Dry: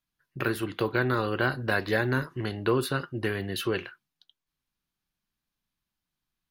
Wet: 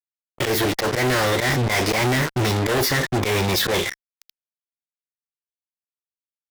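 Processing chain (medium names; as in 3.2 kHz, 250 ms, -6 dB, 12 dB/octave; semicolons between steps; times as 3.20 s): slow attack 116 ms; fuzz box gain 48 dB, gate -45 dBFS; formant shift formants +4 st; trim -5 dB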